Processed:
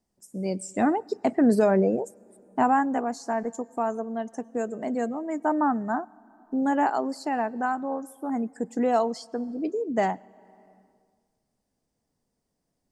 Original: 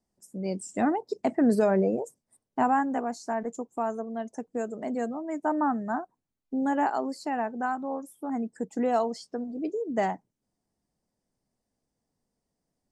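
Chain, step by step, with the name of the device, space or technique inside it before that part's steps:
compressed reverb return (on a send at −13 dB: convolution reverb RT60 1.5 s, pre-delay 94 ms + downward compressor 5 to 1, threshold −40 dBFS, peak gain reduction 19.5 dB)
on the sum: level +2.5 dB

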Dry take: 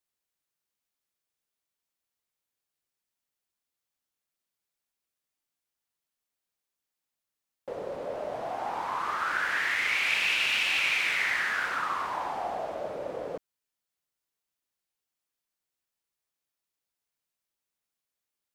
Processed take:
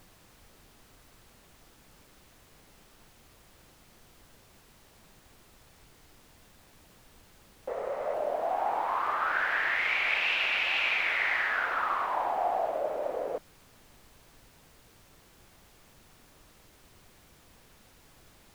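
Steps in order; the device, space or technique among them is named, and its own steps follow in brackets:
horn gramophone (band-pass filter 300–3,000 Hz; parametric band 690 Hz +5.5 dB; tape wow and flutter; pink noise bed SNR 23 dB)
0:07.69–0:08.14: thirty-one-band graphic EQ 315 Hz −12 dB, 1,250 Hz +7 dB, 2,000 Hz +7 dB, 12,500 Hz −8 dB

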